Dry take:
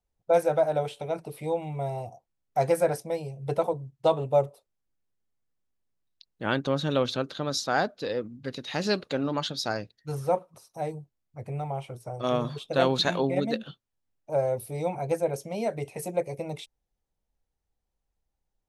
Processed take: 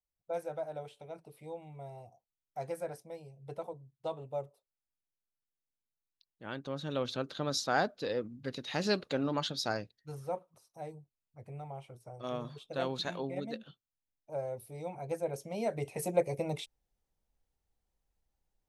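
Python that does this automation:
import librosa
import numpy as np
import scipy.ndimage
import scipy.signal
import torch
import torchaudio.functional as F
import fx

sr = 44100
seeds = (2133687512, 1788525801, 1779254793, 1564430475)

y = fx.gain(x, sr, db=fx.line((6.47, -15.0), (7.42, -4.0), (9.75, -4.0), (10.16, -11.5), (14.85, -11.5), (16.12, -0.5)))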